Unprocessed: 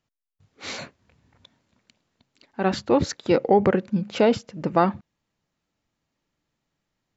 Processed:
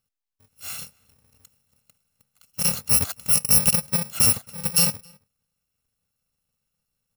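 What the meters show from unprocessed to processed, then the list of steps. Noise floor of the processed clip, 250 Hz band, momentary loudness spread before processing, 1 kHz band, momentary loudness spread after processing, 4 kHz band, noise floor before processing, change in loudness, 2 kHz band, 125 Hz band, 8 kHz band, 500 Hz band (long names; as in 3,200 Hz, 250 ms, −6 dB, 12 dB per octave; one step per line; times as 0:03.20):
−81 dBFS, −10.0 dB, 16 LU, −13.0 dB, 18 LU, +9.0 dB, −81 dBFS, +4.0 dB, −1.5 dB, −0.5 dB, can't be measured, −17.5 dB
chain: samples in bit-reversed order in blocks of 128 samples
slap from a distant wall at 46 metres, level −27 dB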